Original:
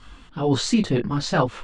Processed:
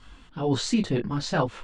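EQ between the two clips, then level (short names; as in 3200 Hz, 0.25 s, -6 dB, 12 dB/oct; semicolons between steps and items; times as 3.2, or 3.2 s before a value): notch 1200 Hz, Q 20; -4.0 dB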